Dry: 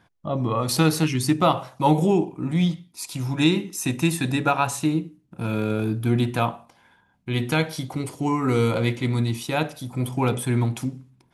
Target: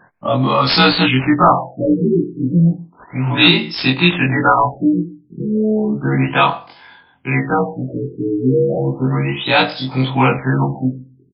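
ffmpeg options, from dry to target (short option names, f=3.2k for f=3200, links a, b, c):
-filter_complex "[0:a]afftfilt=real='re':imag='-im':win_size=2048:overlap=0.75,aemphasis=mode=production:type=bsi,acrossover=split=310|560|5500[a][b][c][d];[b]acompressor=threshold=-48dB:ratio=5[e];[a][e][c][d]amix=inputs=4:normalize=0,highshelf=f=9.3k:g=4.5,aeval=exprs='0.501*sin(PI/2*3.98*val(0)/0.501)':c=same,asplit=2[f][g];[g]adelay=134.1,volume=-29dB,highshelf=f=4k:g=-3.02[h];[f][h]amix=inputs=2:normalize=0,afftfilt=real='re*lt(b*sr/1024,450*pow(5400/450,0.5+0.5*sin(2*PI*0.33*pts/sr)))':imag='im*lt(b*sr/1024,450*pow(5400/450,0.5+0.5*sin(2*PI*0.33*pts/sr)))':win_size=1024:overlap=0.75,volume=2.5dB"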